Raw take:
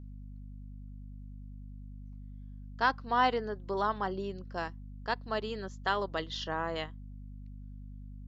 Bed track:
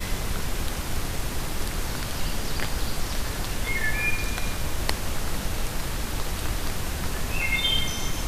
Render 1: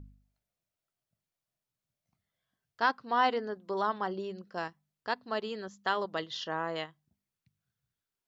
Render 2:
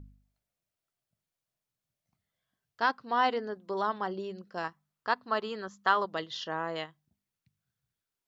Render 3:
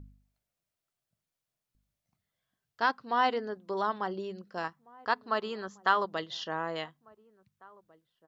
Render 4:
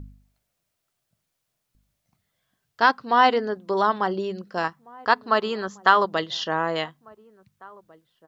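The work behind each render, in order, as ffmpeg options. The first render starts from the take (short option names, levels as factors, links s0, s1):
-af "bandreject=f=50:t=h:w=4,bandreject=f=100:t=h:w=4,bandreject=f=150:t=h:w=4,bandreject=f=200:t=h:w=4,bandreject=f=250:t=h:w=4"
-filter_complex "[0:a]asettb=1/sr,asplit=3[s0][s1][s2];[s0]atrim=end=4.644[s3];[s1]atrim=start=4.64:end=6.05,asetpts=PTS-STARTPTS,afade=t=in:d=0.004:c=qsin,afade=t=out:st=1.406:d=0.004:c=qsin,equalizer=f=1200:t=o:w=0.85:g=8.5[s4];[s2]atrim=start=6.046[s5];[s3][s4]acrossfade=d=0.004:c1=hsin:c2=qsin[s6];[s6][s5]acrossfade=d=0.004:c1=qsin:c2=hsin"
-filter_complex "[0:a]asplit=2[s0][s1];[s1]adelay=1749,volume=0.0631,highshelf=f=4000:g=-39.4[s2];[s0][s2]amix=inputs=2:normalize=0"
-af "volume=2.99,alimiter=limit=0.708:level=0:latency=1"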